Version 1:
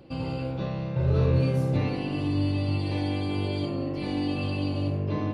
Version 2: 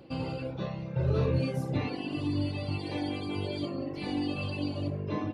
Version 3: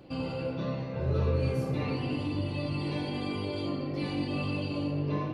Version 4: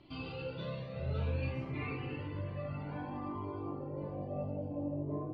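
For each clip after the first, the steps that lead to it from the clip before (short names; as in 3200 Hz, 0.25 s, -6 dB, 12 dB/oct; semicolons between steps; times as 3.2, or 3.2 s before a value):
reverb removal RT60 1.3 s; low shelf 95 Hz -6.5 dB
in parallel at +2 dB: limiter -28 dBFS, peak gain reduction 11 dB; on the sum: flange 0.86 Hz, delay 9.8 ms, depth 4.6 ms, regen -47%; shoebox room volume 130 m³, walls hard, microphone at 0.38 m; gain -3 dB
low-pass sweep 3600 Hz -> 600 Hz, 0.96–4.63; cascading flanger rising 0.59 Hz; gain -3.5 dB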